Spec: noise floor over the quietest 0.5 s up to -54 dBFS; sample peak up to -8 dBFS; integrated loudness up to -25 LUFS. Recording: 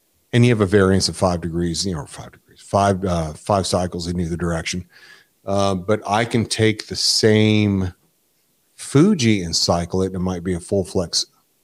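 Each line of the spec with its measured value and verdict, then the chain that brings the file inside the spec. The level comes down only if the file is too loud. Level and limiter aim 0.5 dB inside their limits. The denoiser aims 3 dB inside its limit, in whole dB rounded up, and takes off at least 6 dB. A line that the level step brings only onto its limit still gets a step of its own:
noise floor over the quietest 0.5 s -64 dBFS: OK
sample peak -3.5 dBFS: fail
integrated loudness -19.0 LUFS: fail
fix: gain -6.5 dB

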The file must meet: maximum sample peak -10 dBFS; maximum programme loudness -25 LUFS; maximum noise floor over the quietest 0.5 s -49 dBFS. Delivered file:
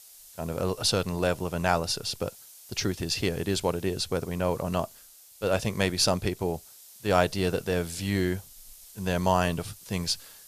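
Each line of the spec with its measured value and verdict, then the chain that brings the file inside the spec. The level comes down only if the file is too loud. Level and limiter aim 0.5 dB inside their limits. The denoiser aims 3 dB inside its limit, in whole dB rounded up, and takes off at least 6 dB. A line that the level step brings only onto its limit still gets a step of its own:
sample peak -6.0 dBFS: fail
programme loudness -28.5 LUFS: OK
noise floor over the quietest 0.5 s -52 dBFS: OK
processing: limiter -10.5 dBFS

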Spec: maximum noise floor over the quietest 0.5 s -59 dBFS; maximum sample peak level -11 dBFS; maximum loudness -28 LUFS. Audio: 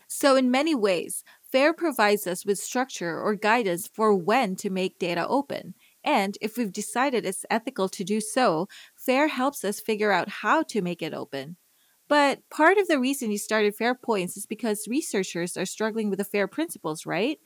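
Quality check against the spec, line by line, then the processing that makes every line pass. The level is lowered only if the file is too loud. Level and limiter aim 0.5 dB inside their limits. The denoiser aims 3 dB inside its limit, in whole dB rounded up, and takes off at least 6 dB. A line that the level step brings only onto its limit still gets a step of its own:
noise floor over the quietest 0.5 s -64 dBFS: OK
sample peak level -8.5 dBFS: fail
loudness -25.5 LUFS: fail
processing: gain -3 dB

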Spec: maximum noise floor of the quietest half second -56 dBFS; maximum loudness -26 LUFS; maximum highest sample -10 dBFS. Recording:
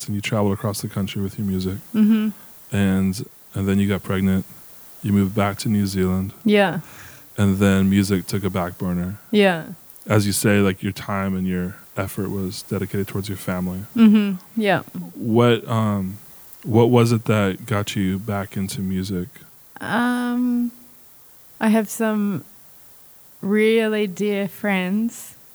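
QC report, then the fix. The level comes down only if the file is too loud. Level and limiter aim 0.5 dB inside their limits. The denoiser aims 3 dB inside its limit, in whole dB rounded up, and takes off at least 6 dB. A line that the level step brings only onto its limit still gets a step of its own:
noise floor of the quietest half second -47 dBFS: fail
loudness -21.0 LUFS: fail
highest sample -4.0 dBFS: fail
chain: denoiser 7 dB, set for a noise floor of -47 dBFS; gain -5.5 dB; limiter -10.5 dBFS

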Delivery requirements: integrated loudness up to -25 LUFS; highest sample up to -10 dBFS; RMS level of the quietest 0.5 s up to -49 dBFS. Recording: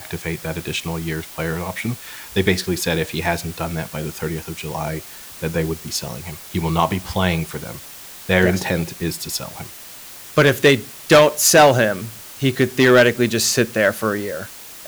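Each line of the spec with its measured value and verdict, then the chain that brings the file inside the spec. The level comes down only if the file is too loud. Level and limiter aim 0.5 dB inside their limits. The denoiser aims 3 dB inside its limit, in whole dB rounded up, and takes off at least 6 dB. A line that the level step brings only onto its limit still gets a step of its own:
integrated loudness -19.0 LUFS: fail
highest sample -2.0 dBFS: fail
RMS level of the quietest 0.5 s -38 dBFS: fail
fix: denoiser 8 dB, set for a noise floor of -38 dBFS; gain -6.5 dB; limiter -10.5 dBFS

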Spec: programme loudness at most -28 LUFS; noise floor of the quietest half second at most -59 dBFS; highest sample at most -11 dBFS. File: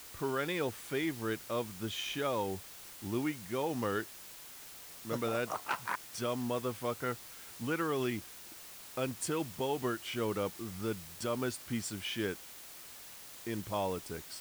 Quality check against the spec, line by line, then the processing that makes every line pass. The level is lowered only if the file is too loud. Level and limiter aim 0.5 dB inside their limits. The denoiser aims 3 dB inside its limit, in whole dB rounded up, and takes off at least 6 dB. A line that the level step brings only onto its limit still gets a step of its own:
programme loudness -36.5 LUFS: OK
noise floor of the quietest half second -50 dBFS: fail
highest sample -21.5 dBFS: OK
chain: denoiser 12 dB, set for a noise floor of -50 dBFS

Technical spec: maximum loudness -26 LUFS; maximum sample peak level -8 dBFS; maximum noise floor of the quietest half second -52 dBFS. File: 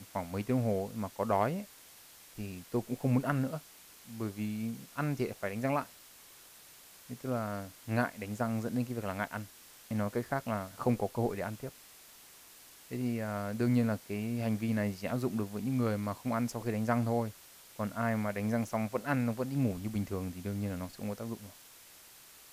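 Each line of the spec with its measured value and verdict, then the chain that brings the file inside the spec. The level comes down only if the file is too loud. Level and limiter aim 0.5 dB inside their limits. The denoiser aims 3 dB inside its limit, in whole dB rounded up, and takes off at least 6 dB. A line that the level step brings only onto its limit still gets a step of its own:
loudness -34.5 LUFS: OK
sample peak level -16.5 dBFS: OK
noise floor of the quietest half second -56 dBFS: OK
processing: none

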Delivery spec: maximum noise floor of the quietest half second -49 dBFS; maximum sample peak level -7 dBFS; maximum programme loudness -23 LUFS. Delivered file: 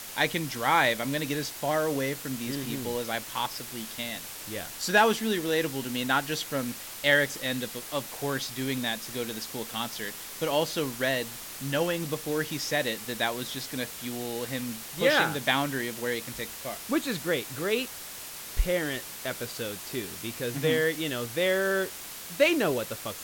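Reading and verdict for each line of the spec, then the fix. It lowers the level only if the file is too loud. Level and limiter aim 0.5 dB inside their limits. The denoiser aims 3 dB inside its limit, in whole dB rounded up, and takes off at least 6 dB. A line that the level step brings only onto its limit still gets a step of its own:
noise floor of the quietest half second -41 dBFS: fail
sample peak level -10.0 dBFS: OK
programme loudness -29.0 LUFS: OK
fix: denoiser 11 dB, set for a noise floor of -41 dBFS

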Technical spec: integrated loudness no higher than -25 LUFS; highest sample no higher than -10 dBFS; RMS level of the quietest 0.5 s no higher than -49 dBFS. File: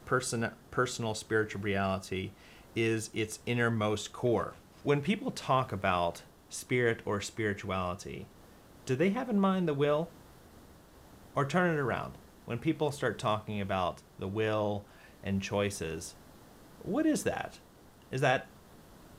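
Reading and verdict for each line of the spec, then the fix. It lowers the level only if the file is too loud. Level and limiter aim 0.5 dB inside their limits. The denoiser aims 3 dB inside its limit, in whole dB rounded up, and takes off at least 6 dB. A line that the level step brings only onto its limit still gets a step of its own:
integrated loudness -32.5 LUFS: OK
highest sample -13.0 dBFS: OK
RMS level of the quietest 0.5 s -57 dBFS: OK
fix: none

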